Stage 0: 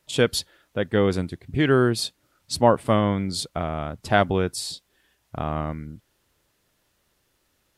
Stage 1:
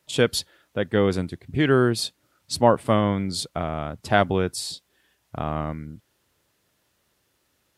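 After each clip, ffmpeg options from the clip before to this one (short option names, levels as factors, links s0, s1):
-af "highpass=63"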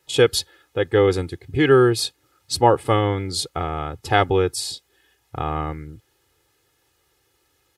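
-af "aecho=1:1:2.4:0.79,volume=1.19"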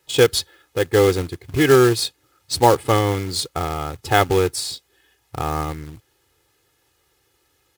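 -af "acrusher=bits=3:mode=log:mix=0:aa=0.000001,volume=1.12"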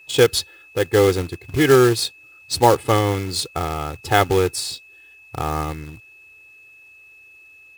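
-af "aeval=exprs='val(0)+0.00562*sin(2*PI*2600*n/s)':c=same"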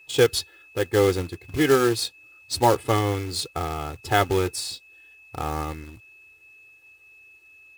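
-af "flanger=delay=2.4:depth=1.6:regen=-67:speed=0.29:shape=triangular"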